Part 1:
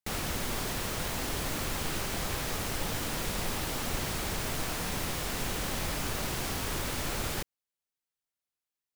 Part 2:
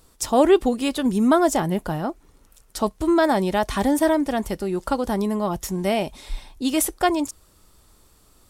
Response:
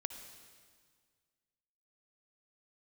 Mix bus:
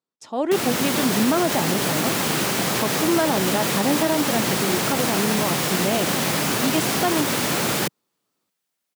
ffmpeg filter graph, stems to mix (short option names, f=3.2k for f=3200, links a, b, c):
-filter_complex "[0:a]lowshelf=f=250:g=5,adelay=450,volume=-0.5dB[a];[1:a]lowpass=5.2k,agate=range=-18dB:threshold=-46dB:ratio=16:detection=peak,volume=-12.5dB[b];[a][b]amix=inputs=2:normalize=0,highpass=f=150:w=0.5412,highpass=f=150:w=1.3066,dynaudnorm=f=150:g=7:m=12.5dB,alimiter=limit=-10dB:level=0:latency=1:release=65"